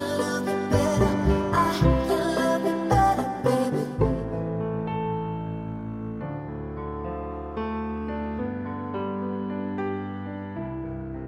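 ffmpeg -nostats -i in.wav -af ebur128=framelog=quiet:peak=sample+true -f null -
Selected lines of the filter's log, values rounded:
Integrated loudness:
  I:         -26.7 LUFS
  Threshold: -36.7 LUFS
Loudness range:
  LRA:         9.2 LU
  Threshold: -46.9 LUFS
  LRA low:   -32.1 LUFS
  LRA high:  -23.0 LUFS
Sample peak:
  Peak:       -7.9 dBFS
True peak:
  Peak:       -7.9 dBFS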